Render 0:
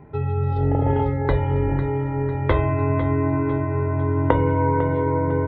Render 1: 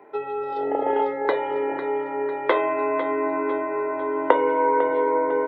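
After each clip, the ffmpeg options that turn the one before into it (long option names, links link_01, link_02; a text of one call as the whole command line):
ffmpeg -i in.wav -af "highpass=frequency=370:width=0.5412,highpass=frequency=370:width=1.3066,volume=3dB" out.wav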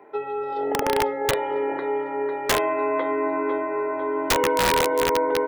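ffmpeg -i in.wav -af "aeval=exprs='(mod(4.47*val(0)+1,2)-1)/4.47':channel_layout=same" out.wav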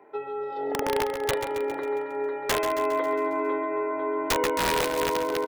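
ffmpeg -i in.wav -af "aecho=1:1:136|272|408|544|680|816|952:0.355|0.202|0.115|0.0657|0.0375|0.0213|0.0122,volume=-4.5dB" out.wav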